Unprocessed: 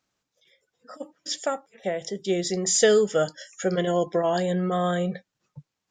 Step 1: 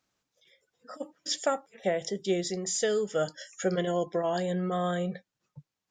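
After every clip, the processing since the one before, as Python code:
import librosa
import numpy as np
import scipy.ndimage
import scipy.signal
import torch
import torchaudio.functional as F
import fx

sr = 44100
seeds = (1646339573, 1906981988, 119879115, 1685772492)

y = fx.rider(x, sr, range_db=5, speed_s=0.5)
y = F.gain(torch.from_numpy(y), -5.0).numpy()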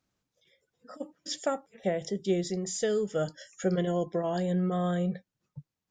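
y = fx.low_shelf(x, sr, hz=330.0, db=10.5)
y = F.gain(torch.from_numpy(y), -4.5).numpy()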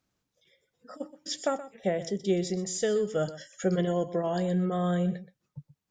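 y = x + 10.0 ** (-15.0 / 20.0) * np.pad(x, (int(124 * sr / 1000.0), 0))[:len(x)]
y = F.gain(torch.from_numpy(y), 1.0).numpy()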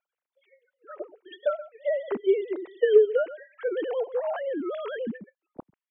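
y = fx.sine_speech(x, sr)
y = F.gain(torch.from_numpy(y), 2.5).numpy()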